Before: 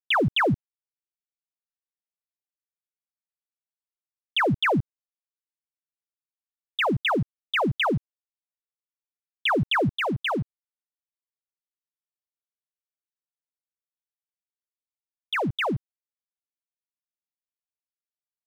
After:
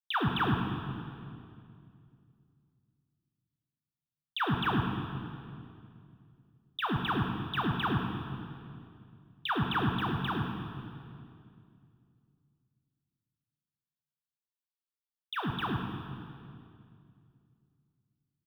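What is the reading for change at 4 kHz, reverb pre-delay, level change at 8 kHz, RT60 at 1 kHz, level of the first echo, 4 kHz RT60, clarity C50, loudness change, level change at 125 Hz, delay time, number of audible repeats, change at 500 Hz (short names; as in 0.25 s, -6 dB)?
-8.5 dB, 13 ms, n/a, 2.2 s, -9.5 dB, 2.1 s, 2.5 dB, -8.0 dB, -3.0 dB, 0.106 s, 1, -13.0 dB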